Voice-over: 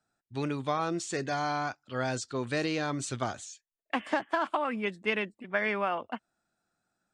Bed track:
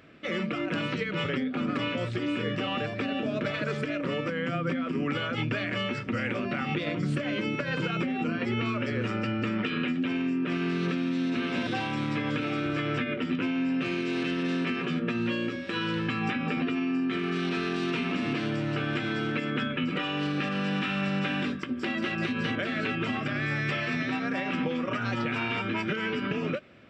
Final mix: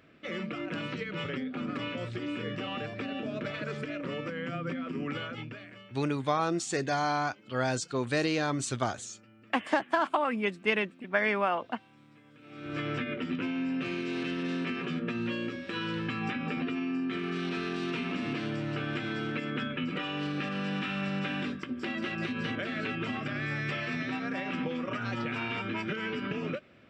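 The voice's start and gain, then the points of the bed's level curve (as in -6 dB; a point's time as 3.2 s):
5.60 s, +2.0 dB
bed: 5.21 s -5.5 dB
6.11 s -28.5 dB
12.34 s -28.5 dB
12.78 s -4 dB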